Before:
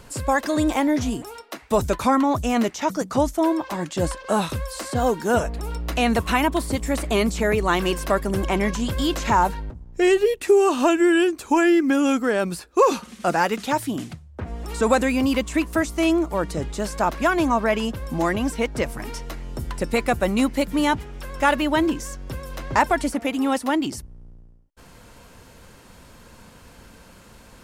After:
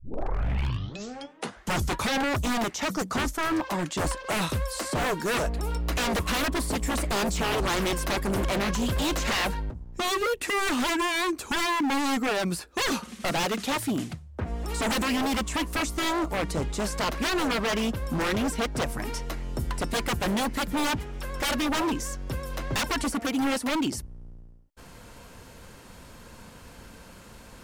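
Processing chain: tape start at the beginning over 2.05 s; wavefolder -21 dBFS

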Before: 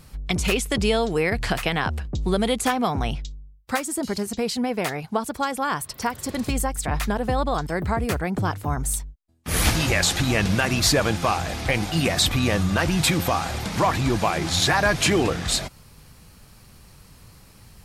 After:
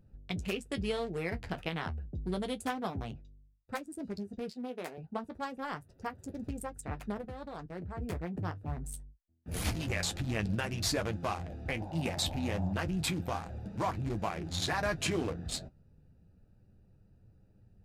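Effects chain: Wiener smoothing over 41 samples; 4.5–4.98 HPF 280 Hz 12 dB/oct; 7.21–7.98 level quantiser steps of 15 dB; flange 0.29 Hz, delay 9.2 ms, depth 3.4 ms, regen -39%; 11.8–12.72 band noise 550–880 Hz -39 dBFS; gain -7.5 dB

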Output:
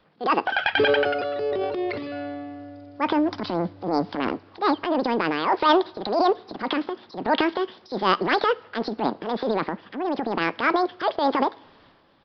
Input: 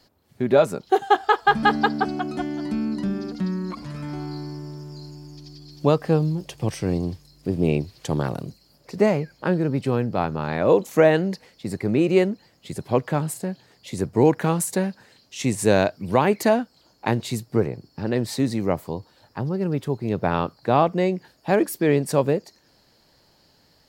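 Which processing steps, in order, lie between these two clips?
wide varispeed 1.95×; transient shaper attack -9 dB, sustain +8 dB; on a send at -19.5 dB: reverb, pre-delay 3 ms; on the sum: downsampling 11025 Hz

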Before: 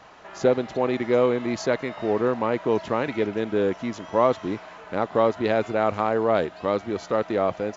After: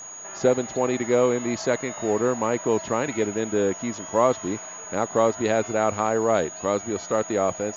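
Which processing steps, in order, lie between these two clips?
whine 6700 Hz -37 dBFS

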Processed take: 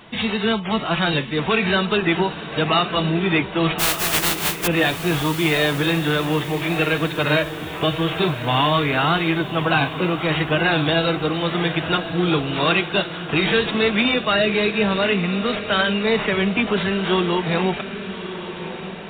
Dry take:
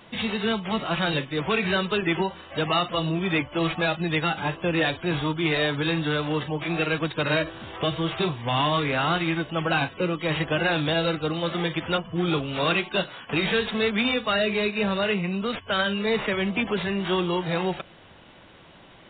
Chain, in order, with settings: 3.78–4.66 spectral contrast lowered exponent 0.11; notch 540 Hz, Q 12; diffused feedback echo 1.192 s, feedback 49%, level -11 dB; gain +5 dB

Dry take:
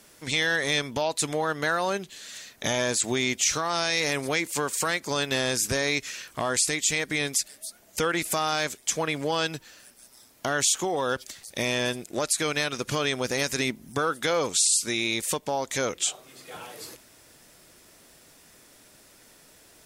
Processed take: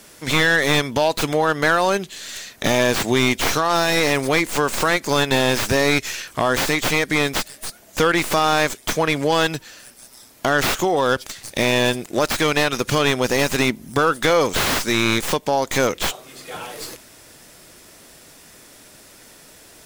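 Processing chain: tracing distortion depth 0.25 ms; slew limiter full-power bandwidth 220 Hz; gain +8.5 dB

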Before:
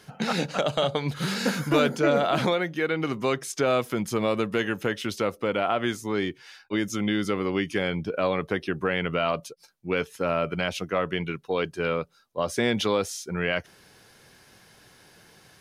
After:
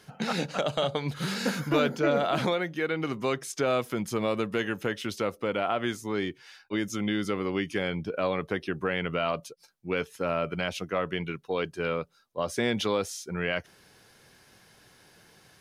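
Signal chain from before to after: 1.6–2.2 bell 9000 Hz -8 dB 0.71 oct; gain -3 dB

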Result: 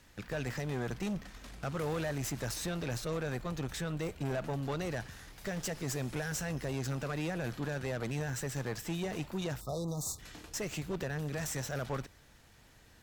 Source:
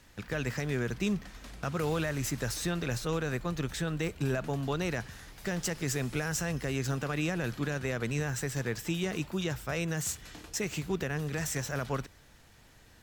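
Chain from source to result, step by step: tube stage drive 31 dB, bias 0.5; spectral delete 9.61–10.19, 1300–3500 Hz; dynamic EQ 680 Hz, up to +4 dB, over -48 dBFS, Q 1.7

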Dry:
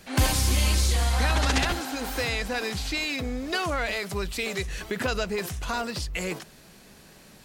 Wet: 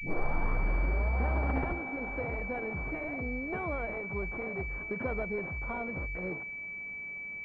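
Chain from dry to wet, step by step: tape start at the beginning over 1.18 s; pulse-width modulation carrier 2300 Hz; gain -5.5 dB

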